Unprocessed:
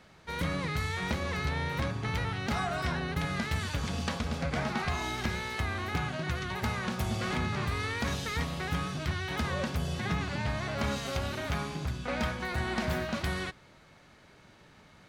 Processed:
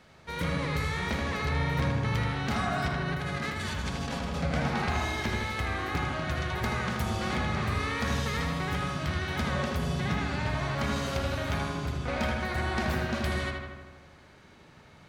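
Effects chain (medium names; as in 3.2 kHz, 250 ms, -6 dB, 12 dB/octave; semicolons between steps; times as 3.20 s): 2.88–4.43 s: compressor with a negative ratio -35 dBFS, ratio -1; filtered feedback delay 79 ms, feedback 69%, low-pass 3.7 kHz, level -3 dB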